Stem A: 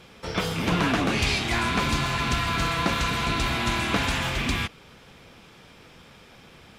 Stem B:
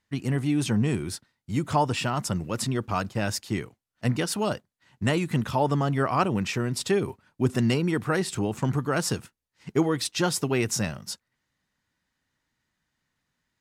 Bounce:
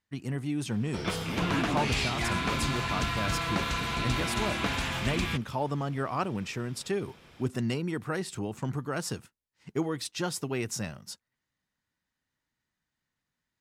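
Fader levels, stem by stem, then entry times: -5.5 dB, -7.0 dB; 0.70 s, 0.00 s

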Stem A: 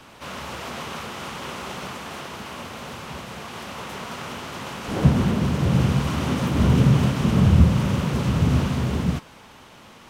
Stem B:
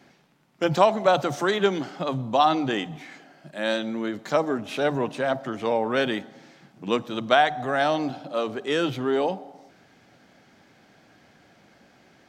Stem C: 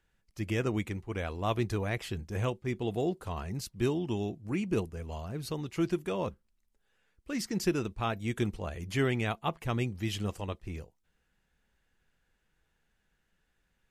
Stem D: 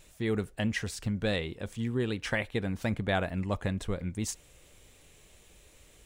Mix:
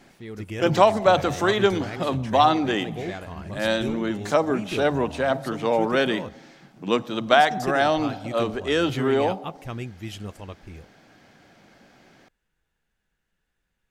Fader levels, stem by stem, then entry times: mute, +2.0 dB, -2.0 dB, -8.0 dB; mute, 0.00 s, 0.00 s, 0.00 s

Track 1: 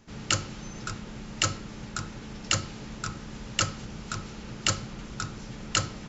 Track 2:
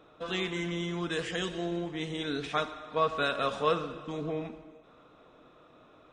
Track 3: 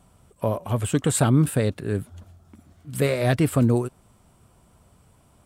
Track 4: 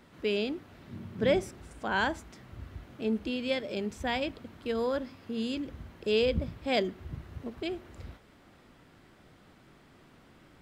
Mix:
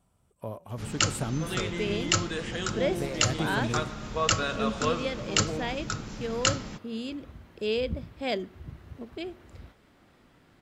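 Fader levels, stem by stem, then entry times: +1.0 dB, -1.5 dB, -13.0 dB, -2.0 dB; 0.70 s, 1.20 s, 0.00 s, 1.55 s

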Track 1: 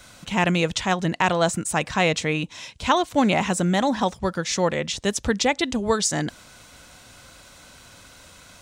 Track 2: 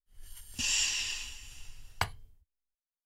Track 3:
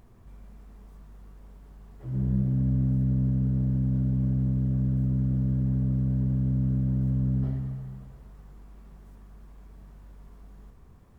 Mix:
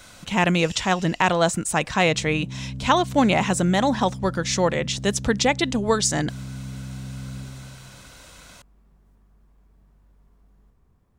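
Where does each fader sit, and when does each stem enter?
+1.0 dB, -13.5 dB, -9.0 dB; 0.00 s, 0.00 s, 0.00 s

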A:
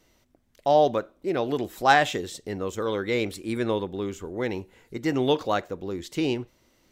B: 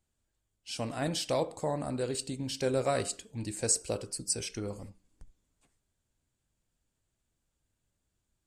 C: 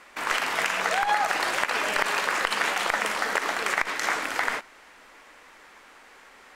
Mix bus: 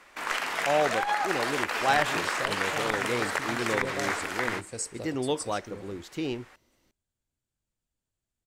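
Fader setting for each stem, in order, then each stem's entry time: -6.0 dB, -6.5 dB, -4.0 dB; 0.00 s, 1.10 s, 0.00 s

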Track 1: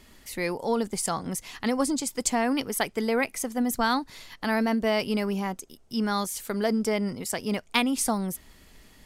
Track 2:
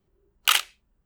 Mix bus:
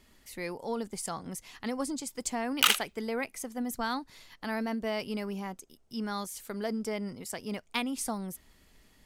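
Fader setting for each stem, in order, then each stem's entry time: -8.0 dB, -3.0 dB; 0.00 s, 2.15 s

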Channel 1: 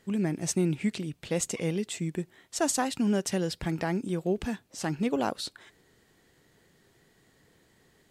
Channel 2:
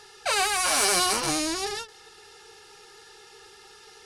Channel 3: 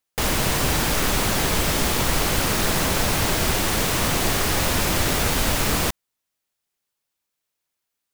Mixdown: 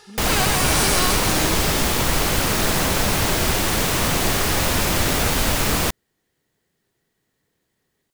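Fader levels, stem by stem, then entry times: -11.0 dB, +0.5 dB, +1.5 dB; 0.00 s, 0.00 s, 0.00 s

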